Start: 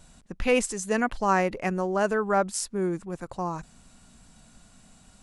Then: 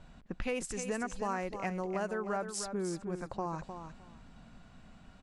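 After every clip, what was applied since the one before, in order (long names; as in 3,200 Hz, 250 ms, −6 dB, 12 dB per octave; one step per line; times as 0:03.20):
low-pass that shuts in the quiet parts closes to 2,600 Hz, open at −21 dBFS
downward compressor 4 to 1, threshold −34 dBFS, peak gain reduction 14 dB
on a send: repeating echo 307 ms, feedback 17%, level −8.5 dB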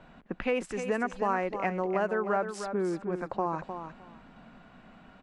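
three-way crossover with the lows and the highs turned down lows −13 dB, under 190 Hz, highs −16 dB, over 3,200 Hz
level +7 dB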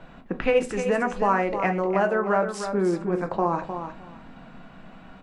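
rectangular room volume 150 cubic metres, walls furnished, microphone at 0.7 metres
level +5.5 dB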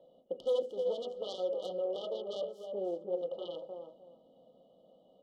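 phase distortion by the signal itself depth 0.91 ms
brick-wall band-stop 1,300–2,900 Hz
formant filter e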